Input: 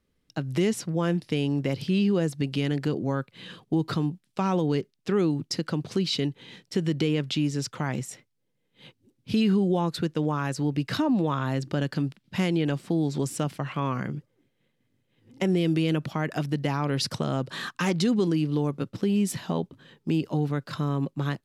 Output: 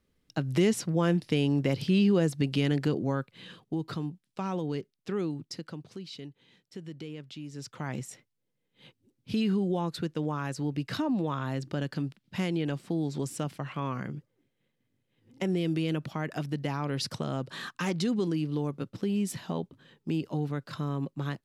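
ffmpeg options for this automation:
ffmpeg -i in.wav -af "volume=11dB,afade=type=out:start_time=2.76:duration=1.01:silence=0.421697,afade=type=out:start_time=5.2:duration=0.8:silence=0.375837,afade=type=in:start_time=7.46:duration=0.5:silence=0.281838" out.wav

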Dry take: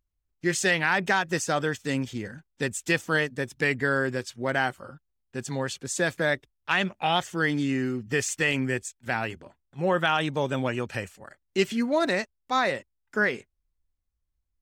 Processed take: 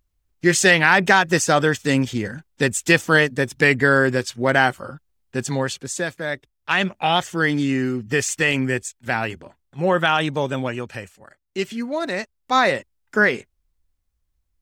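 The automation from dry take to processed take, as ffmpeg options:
ffmpeg -i in.wav -af "volume=26.5dB,afade=type=out:start_time=5.38:duration=0.8:silence=0.237137,afade=type=in:start_time=6.18:duration=0.66:silence=0.354813,afade=type=out:start_time=10.2:duration=0.8:silence=0.473151,afade=type=in:start_time=12.09:duration=0.49:silence=0.375837" out.wav

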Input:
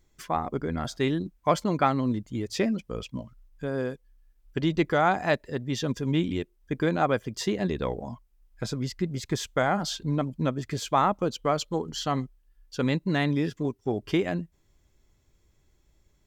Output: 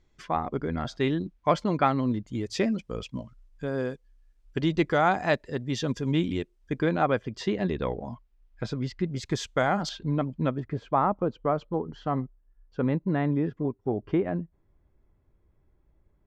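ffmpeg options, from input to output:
ffmpeg -i in.wav -af "asetnsamples=nb_out_samples=441:pad=0,asendcmd='2.27 lowpass f 7600;6.81 lowpass f 3800;9.16 lowpass f 6900;9.89 lowpass f 3100;10.6 lowpass f 1300',lowpass=4500" out.wav

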